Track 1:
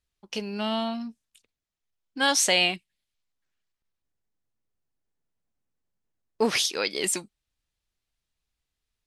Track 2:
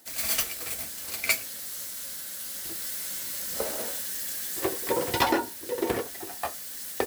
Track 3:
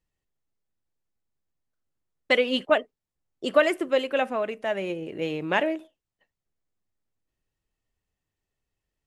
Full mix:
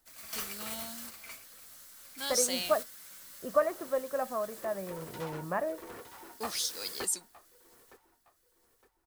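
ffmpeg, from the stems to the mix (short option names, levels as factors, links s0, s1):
-filter_complex "[0:a]aexciter=amount=4.5:drive=4.4:freq=3700,volume=0.126,asplit=2[s0][s1];[1:a]asoftclip=type=hard:threshold=0.0422,equalizer=f=1200:t=o:w=0.75:g=7,volume=0.473,asplit=2[s2][s3];[s3]volume=0.119[s4];[2:a]lowpass=f=1200:w=0.5412,lowpass=f=1200:w=1.3066,equalizer=f=420:w=0.64:g=-13,aecho=1:1:1.7:0.38,volume=1.12[s5];[s1]apad=whole_len=311518[s6];[s2][s6]sidechaingate=range=0.316:threshold=0.00224:ratio=16:detection=peak[s7];[s4]aecho=0:1:913|1826|2739|3652|4565:1|0.33|0.109|0.0359|0.0119[s8];[s0][s7][s5][s8]amix=inputs=4:normalize=0"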